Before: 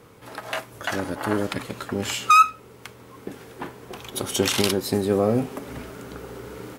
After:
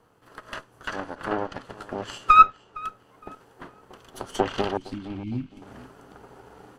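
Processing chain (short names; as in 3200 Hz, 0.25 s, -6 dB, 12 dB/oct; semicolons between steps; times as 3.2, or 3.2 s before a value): minimum comb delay 0.66 ms; bell 730 Hz +10 dB 1.7 oct; treble ducked by the level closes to 2600 Hz, closed at -15.5 dBFS; 4.77–5.62 brick-wall FIR band-stop 360–2100 Hz; on a send: darkening echo 0.462 s, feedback 36%, low-pass 4000 Hz, level -14 dB; on the sum: upward expander 1.5:1, over -36 dBFS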